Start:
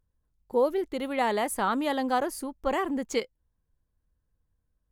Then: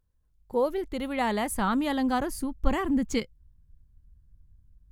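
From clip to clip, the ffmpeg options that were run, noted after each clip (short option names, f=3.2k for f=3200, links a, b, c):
-af "asubboost=boost=11.5:cutoff=170"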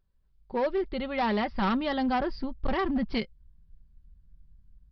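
-af "aecho=1:1:5.2:0.48,aresample=11025,asoftclip=type=hard:threshold=-22.5dB,aresample=44100"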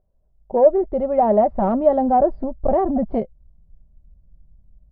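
-af "lowpass=f=650:t=q:w=6.3,volume=5dB"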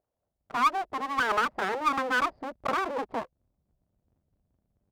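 -af "aeval=exprs='abs(val(0))':c=same,highpass=f=520:p=1,volume=-3dB"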